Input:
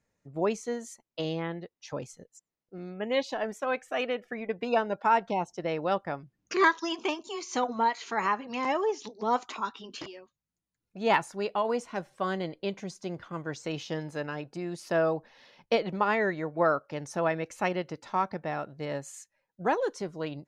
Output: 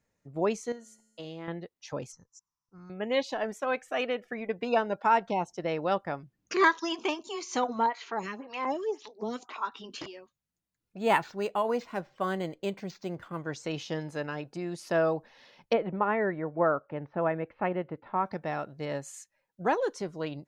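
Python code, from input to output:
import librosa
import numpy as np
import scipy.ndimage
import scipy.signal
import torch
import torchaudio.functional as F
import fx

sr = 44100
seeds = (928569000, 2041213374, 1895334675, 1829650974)

y = fx.comb_fb(x, sr, f0_hz=110.0, decay_s=1.3, harmonics='all', damping=0.0, mix_pct=70, at=(0.72, 1.48))
y = fx.curve_eq(y, sr, hz=(120.0, 210.0, 440.0, 670.0, 1000.0, 3300.0, 5600.0, 12000.0), db=(0, -9, -19, -18, 10, -28, 9, -28), at=(2.12, 2.9))
y = fx.stagger_phaser(y, sr, hz=1.9, at=(7.86, 9.72))
y = fx.resample_linear(y, sr, factor=4, at=(10.98, 13.39))
y = fx.gaussian_blur(y, sr, sigma=3.8, at=(15.73, 18.26))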